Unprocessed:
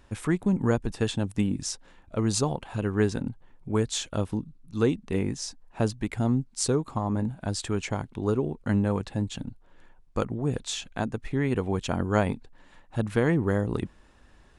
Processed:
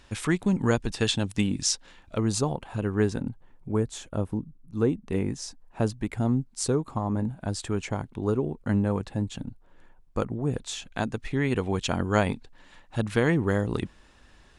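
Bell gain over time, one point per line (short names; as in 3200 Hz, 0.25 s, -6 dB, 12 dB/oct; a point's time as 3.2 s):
bell 4200 Hz 2.5 oct
+9 dB
from 2.18 s -2.5 dB
from 3.72 s -11.5 dB
from 5.08 s -3 dB
from 10.92 s +6 dB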